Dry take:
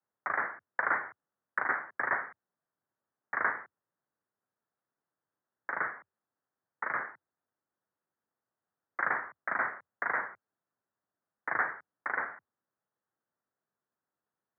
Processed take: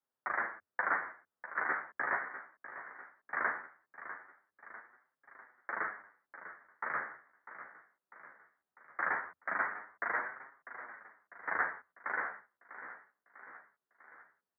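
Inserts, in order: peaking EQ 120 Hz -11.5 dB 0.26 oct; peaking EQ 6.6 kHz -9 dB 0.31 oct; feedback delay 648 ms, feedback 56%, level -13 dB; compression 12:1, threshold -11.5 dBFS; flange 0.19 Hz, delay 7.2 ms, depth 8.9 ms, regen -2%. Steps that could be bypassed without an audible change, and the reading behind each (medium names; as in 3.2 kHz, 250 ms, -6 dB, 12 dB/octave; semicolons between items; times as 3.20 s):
peaking EQ 6.6 kHz: input has nothing above 2.4 kHz; compression, threshold -11.5 dBFS: peak at its input -14.5 dBFS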